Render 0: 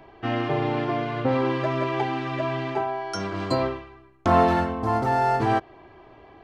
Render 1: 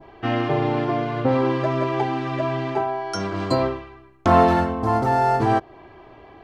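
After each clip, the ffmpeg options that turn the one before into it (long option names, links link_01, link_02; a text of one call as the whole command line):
ffmpeg -i in.wav -af "adynamicequalizer=threshold=0.0126:dfrequency=2500:dqfactor=0.75:tfrequency=2500:tqfactor=0.75:attack=5:release=100:ratio=0.375:range=2.5:mode=cutabove:tftype=bell,volume=3.5dB" out.wav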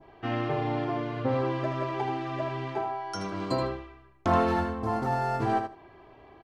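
ffmpeg -i in.wav -af "aecho=1:1:78|156|234:0.447|0.0715|0.0114,volume=-8dB" out.wav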